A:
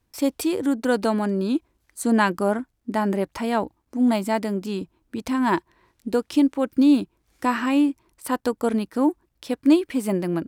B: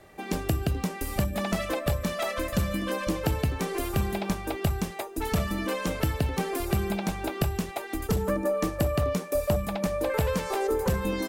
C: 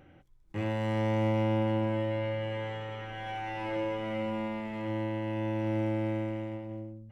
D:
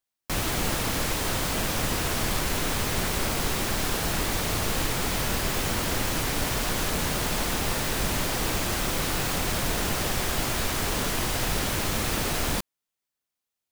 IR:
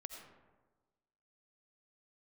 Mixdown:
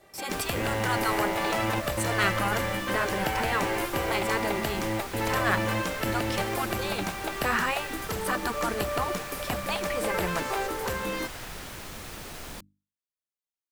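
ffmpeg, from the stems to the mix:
-filter_complex "[0:a]asubboost=boost=7:cutoff=62,volume=0.794,asplit=2[s0][s1];[1:a]lowshelf=f=230:g=-10.5,volume=0.841[s2];[2:a]highpass=f=85:w=0.5412,highpass=f=85:w=1.3066,volume=1.33[s3];[3:a]bandreject=f=50:t=h:w=6,bandreject=f=100:t=h:w=6,bandreject=f=150:t=h:w=6,bandreject=f=200:t=h:w=6,bandreject=f=250:t=h:w=6,bandreject=f=300:t=h:w=6,volume=0.211[s4];[s1]apad=whole_len=313977[s5];[s3][s5]sidechaingate=range=0.0224:threshold=0.00251:ratio=16:detection=peak[s6];[s0][s2][s6][s4]amix=inputs=4:normalize=0,afftfilt=real='re*lt(hypot(re,im),0.316)':imag='im*lt(hypot(re,im),0.316)':win_size=1024:overlap=0.75,adynamicequalizer=threshold=0.00631:dfrequency=1600:dqfactor=0.74:tfrequency=1600:tqfactor=0.74:attack=5:release=100:ratio=0.375:range=2.5:mode=boostabove:tftype=bell"

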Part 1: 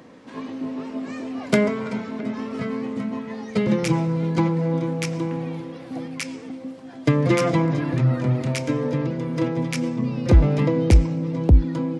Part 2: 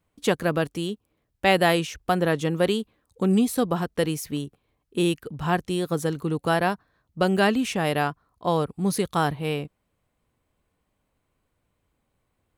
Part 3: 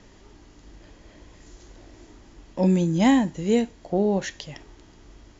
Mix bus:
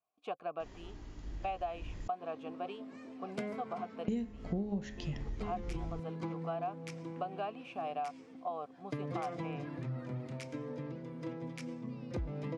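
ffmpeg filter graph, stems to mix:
-filter_complex "[0:a]bass=f=250:g=-2,treble=f=4000:g=3,adelay=1850,volume=0.141[s0];[1:a]asplit=3[s1][s2][s3];[s1]bandpass=f=730:t=q:w=8,volume=1[s4];[s2]bandpass=f=1090:t=q:w=8,volume=0.501[s5];[s3]bandpass=f=2440:t=q:w=8,volume=0.355[s6];[s4][s5][s6]amix=inputs=3:normalize=0,bandreject=f=530:w=12,volume=0.708[s7];[2:a]bandreject=f=69.62:t=h:w=4,bandreject=f=139.24:t=h:w=4,bandreject=f=208.86:t=h:w=4,bandreject=f=278.48:t=h:w=4,bandreject=f=348.1:t=h:w=4,bandreject=f=417.72:t=h:w=4,bandreject=f=487.34:t=h:w=4,bandreject=f=556.96:t=h:w=4,bandreject=f=626.58:t=h:w=4,bandreject=f=696.2:t=h:w=4,bandreject=f=765.82:t=h:w=4,bandreject=f=835.44:t=h:w=4,bandreject=f=905.06:t=h:w=4,bandreject=f=974.68:t=h:w=4,bandreject=f=1044.3:t=h:w=4,bandreject=f=1113.92:t=h:w=4,bandreject=f=1183.54:t=h:w=4,bandreject=f=1253.16:t=h:w=4,bandreject=f=1322.78:t=h:w=4,bandreject=f=1392.4:t=h:w=4,bandreject=f=1462.02:t=h:w=4,bandreject=f=1531.64:t=h:w=4,bandreject=f=1601.26:t=h:w=4,bandreject=f=1670.88:t=h:w=4,bandreject=f=1740.5:t=h:w=4,bandreject=f=1810.12:t=h:w=4,bandreject=f=1879.74:t=h:w=4,bandreject=f=1949.36:t=h:w=4,bandreject=f=2018.98:t=h:w=4,bandreject=f=2088.6:t=h:w=4,bandreject=f=2158.22:t=h:w=4,bandreject=f=2227.84:t=h:w=4,bandreject=f=2297.46:t=h:w=4,bandreject=f=2367.08:t=h:w=4,bandreject=f=2436.7:t=h:w=4,bandreject=f=2506.32:t=h:w=4,bandreject=f=2575.94:t=h:w=4,asubboost=boost=5.5:cutoff=230,adelay=600,volume=0.891,asplit=3[s8][s9][s10];[s8]atrim=end=2.08,asetpts=PTS-STARTPTS,afade=t=out:st=2.076:d=0.004:c=hsin[s11];[s9]atrim=start=2.08:end=4.08,asetpts=PTS-STARTPTS,volume=0[s12];[s10]atrim=start=4.08,asetpts=PTS-STARTPTS,afade=t=in:d=0.004:c=hsin[s13];[s11][s12][s13]concat=n=3:v=0:a=1[s14];[s0][s7][s14]amix=inputs=3:normalize=0,highshelf=f=4900:g=-9,acompressor=threshold=0.02:ratio=6"

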